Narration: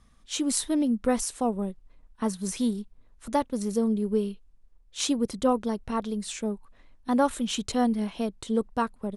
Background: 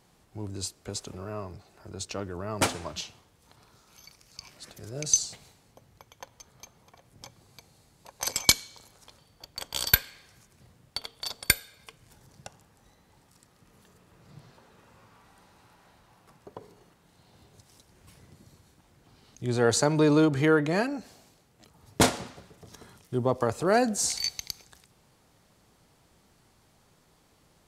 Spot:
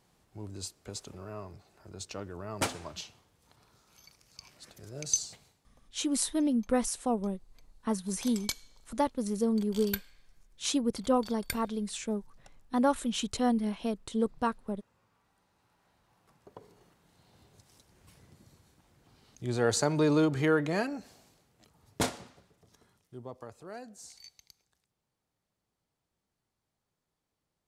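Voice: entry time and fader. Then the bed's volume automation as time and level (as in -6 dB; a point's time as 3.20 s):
5.65 s, -3.0 dB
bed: 5.33 s -5.5 dB
5.71 s -14.5 dB
15.46 s -14.5 dB
16.83 s -4 dB
21.38 s -4 dB
23.82 s -22 dB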